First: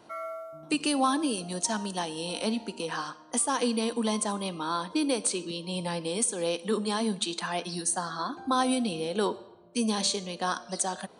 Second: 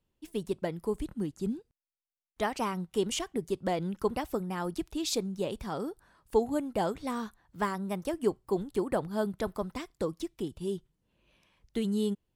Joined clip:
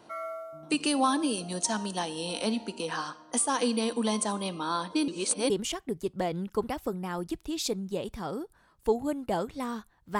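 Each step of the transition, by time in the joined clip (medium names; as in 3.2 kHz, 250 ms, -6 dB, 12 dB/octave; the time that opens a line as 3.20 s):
first
5.08–5.50 s: reverse
5.50 s: go over to second from 2.97 s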